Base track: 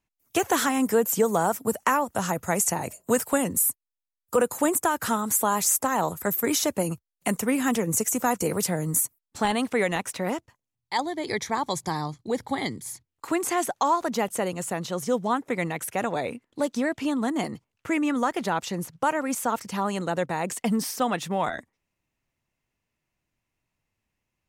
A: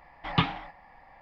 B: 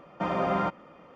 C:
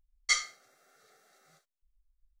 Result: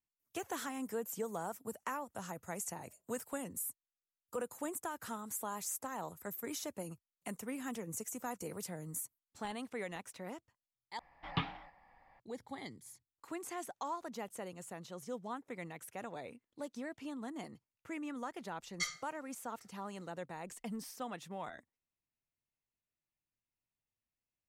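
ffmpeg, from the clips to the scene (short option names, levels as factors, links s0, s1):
-filter_complex "[0:a]volume=0.133,asplit=2[s0][s1];[s0]atrim=end=10.994[s2];[1:a]atrim=end=1.21,asetpts=PTS-STARTPTS,volume=0.282[s3];[s1]atrim=start=12.196[s4];[3:a]atrim=end=2.4,asetpts=PTS-STARTPTS,volume=0.299,afade=t=in:d=0.004:c=hsin,afade=t=out:st=2.396:d=0.004:c=hsin,adelay=18510[s5];[s2][s3]acrossfade=d=0.004:c1=hsin:c2=hsin[s6];[s6][s4]acrossfade=d=0.004:c1=hsin:c2=hsin[s7];[s7][s5]amix=inputs=2:normalize=0"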